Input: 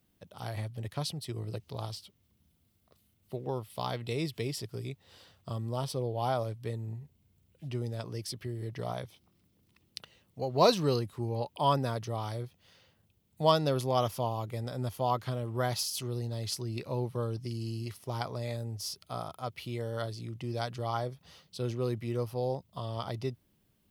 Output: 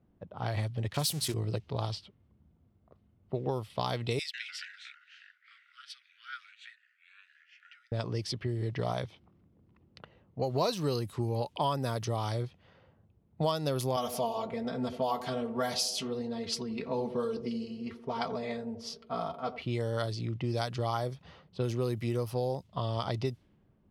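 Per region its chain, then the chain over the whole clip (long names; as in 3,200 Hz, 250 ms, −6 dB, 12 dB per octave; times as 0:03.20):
0:00.94–0:01.34: spike at every zero crossing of −32 dBFS + high-shelf EQ 7,700 Hz +2.5 dB + mains-hum notches 60/120/180 Hz
0:04.19–0:07.92: delay with pitch and tempo change per echo 145 ms, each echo −5 semitones, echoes 3, each echo −6 dB + Butterworth high-pass 1,400 Hz 96 dB per octave
0:13.96–0:19.62: comb filter 4.4 ms, depth 91% + feedback echo with a band-pass in the loop 87 ms, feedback 75%, band-pass 380 Hz, level −11.5 dB + flanger 1.2 Hz, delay 6.5 ms, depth 5.2 ms, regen −61%
whole clip: low-pass that shuts in the quiet parts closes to 1,000 Hz, open at −28.5 dBFS; high-shelf EQ 5,300 Hz +5 dB; downward compressor 6 to 1, threshold −33 dBFS; level +6 dB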